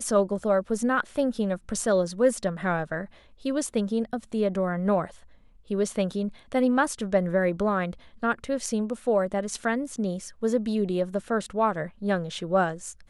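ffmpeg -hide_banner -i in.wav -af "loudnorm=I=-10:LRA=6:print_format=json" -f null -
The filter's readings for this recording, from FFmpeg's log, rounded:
"input_i" : "-27.0",
"input_tp" : "-9.9",
"input_lra" : "1.2",
"input_thresh" : "-37.2",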